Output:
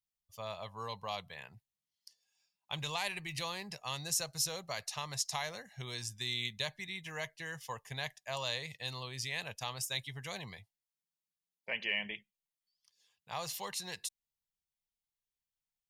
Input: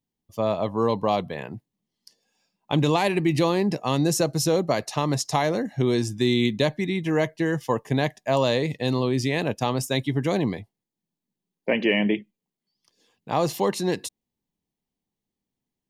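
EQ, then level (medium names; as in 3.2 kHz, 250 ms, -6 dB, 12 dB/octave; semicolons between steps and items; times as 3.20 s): amplifier tone stack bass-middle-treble 10-0-10; -4.5 dB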